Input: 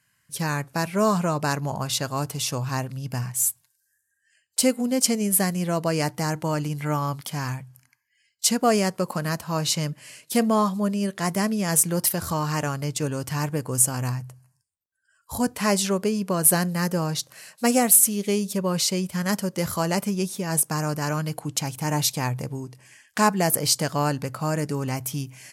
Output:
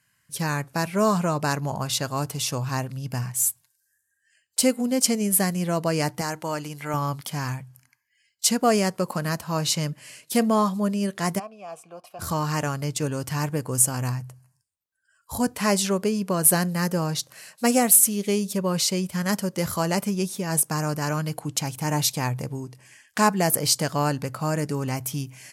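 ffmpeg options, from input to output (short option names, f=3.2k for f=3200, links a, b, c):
-filter_complex "[0:a]asettb=1/sr,asplit=3[a][b][c];[a]atrim=end=6.214[d];[b]atrim=start=6.21:end=6.94,asetpts=PTS-STARTPTS,afade=t=in:d=0.004:c=qsin,afade=t=out:st=0.726:d=0.004:c=qsin,equalizer=f=100:w=0.41:g=-10.5[e];[c]atrim=start=6.936[f];[d][e]acrossfade=d=0.004:c1=hsin:c2=qsin[g];[g][f]acrossfade=d=0.004:c1=qsin:c2=hsin,asplit=3[h][i][j];[h]afade=t=out:st=11.38:d=0.02[k];[i]asplit=3[l][m][n];[l]bandpass=f=730:t=q:w=8,volume=0dB[o];[m]bandpass=f=1.09k:t=q:w=8,volume=-6dB[p];[n]bandpass=f=2.44k:t=q:w=8,volume=-9dB[q];[o][p][q]amix=inputs=3:normalize=0,afade=t=in:st=11.38:d=0.02,afade=t=out:st=12.19:d=0.02[r];[j]afade=t=in:st=12.19:d=0.02[s];[k][r][s]amix=inputs=3:normalize=0"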